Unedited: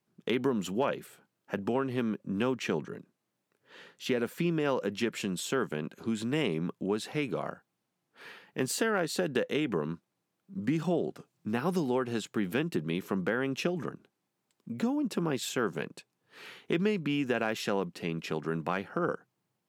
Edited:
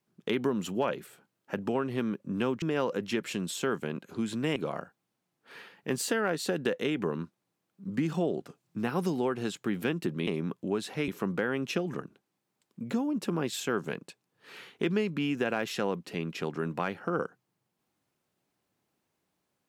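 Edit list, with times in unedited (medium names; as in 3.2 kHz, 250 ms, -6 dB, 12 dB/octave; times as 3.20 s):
2.62–4.51 s: delete
6.45–7.26 s: move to 12.97 s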